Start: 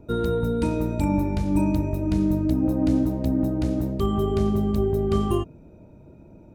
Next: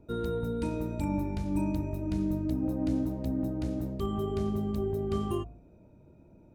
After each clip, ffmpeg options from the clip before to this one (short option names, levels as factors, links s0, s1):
-af "bandreject=f=54.09:t=h:w=4,bandreject=f=108.18:t=h:w=4,bandreject=f=162.27:t=h:w=4,bandreject=f=216.36:t=h:w=4,bandreject=f=270.45:t=h:w=4,bandreject=f=324.54:t=h:w=4,bandreject=f=378.63:t=h:w=4,bandreject=f=432.72:t=h:w=4,bandreject=f=486.81:t=h:w=4,bandreject=f=540.9:t=h:w=4,bandreject=f=594.99:t=h:w=4,bandreject=f=649.08:t=h:w=4,bandreject=f=703.17:t=h:w=4,bandreject=f=757.26:t=h:w=4,bandreject=f=811.35:t=h:w=4,bandreject=f=865.44:t=h:w=4,bandreject=f=919.53:t=h:w=4,bandreject=f=973.62:t=h:w=4,bandreject=f=1027.71:t=h:w=4,bandreject=f=1081.8:t=h:w=4,bandreject=f=1135.89:t=h:w=4,bandreject=f=1189.98:t=h:w=4,bandreject=f=1244.07:t=h:w=4,bandreject=f=1298.16:t=h:w=4,bandreject=f=1352.25:t=h:w=4,bandreject=f=1406.34:t=h:w=4,bandreject=f=1460.43:t=h:w=4,bandreject=f=1514.52:t=h:w=4,volume=0.398"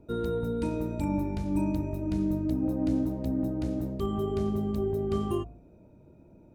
-af "equalizer=f=380:t=o:w=2.4:g=2.5"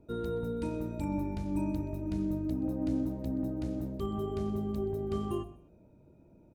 -af "aecho=1:1:126|252:0.126|0.0315,volume=0.596"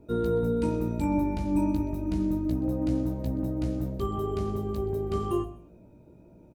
-filter_complex "[0:a]asplit=2[s0][s1];[s1]adelay=17,volume=0.531[s2];[s0][s2]amix=inputs=2:normalize=0,volume=1.78"